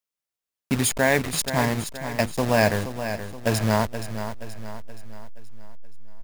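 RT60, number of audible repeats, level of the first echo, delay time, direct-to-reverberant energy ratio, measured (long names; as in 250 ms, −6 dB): no reverb audible, 4, −10.0 dB, 475 ms, no reverb audible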